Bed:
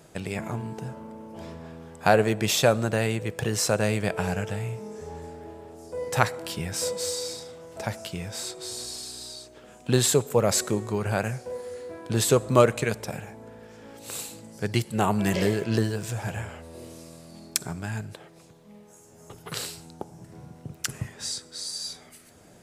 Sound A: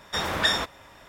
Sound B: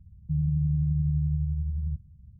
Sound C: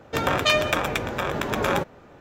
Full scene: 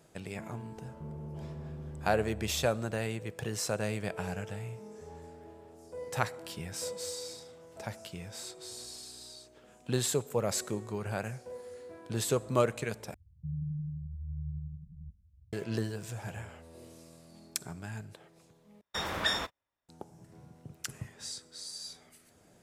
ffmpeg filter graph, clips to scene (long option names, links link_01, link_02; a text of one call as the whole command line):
ffmpeg -i bed.wav -i cue0.wav -i cue1.wav -filter_complex "[2:a]asplit=2[link_01][link_02];[0:a]volume=-9dB[link_03];[link_01]asoftclip=type=tanh:threshold=-30.5dB[link_04];[link_02]asplit=2[link_05][link_06];[link_06]afreqshift=0.92[link_07];[link_05][link_07]amix=inputs=2:normalize=1[link_08];[1:a]agate=range=-33dB:threshold=-41dB:ratio=16:release=100:detection=peak[link_09];[link_03]asplit=3[link_10][link_11][link_12];[link_10]atrim=end=13.144[link_13];[link_08]atrim=end=2.39,asetpts=PTS-STARTPTS,volume=-9.5dB[link_14];[link_11]atrim=start=15.526:end=18.814[link_15];[link_09]atrim=end=1.08,asetpts=PTS-STARTPTS,volume=-7dB[link_16];[link_12]atrim=start=19.886[link_17];[link_04]atrim=end=2.39,asetpts=PTS-STARTPTS,volume=-10dB,afade=type=in:duration=0.004:curve=hsin,afade=type=out:start_time=2.386:duration=0.004:curve=hsin,adelay=710[link_18];[link_13][link_14]acrossfade=duration=0.004:curve1=hsin:curve2=hsin[link_19];[link_19][link_15]acrossfade=duration=0.004:curve1=hsin:curve2=hsin[link_20];[link_20][link_16]acrossfade=duration=0.004:curve1=hsin:curve2=hsin[link_21];[link_21][link_17]acrossfade=duration=0.004:curve1=hsin:curve2=hsin[link_22];[link_22][link_18]amix=inputs=2:normalize=0" out.wav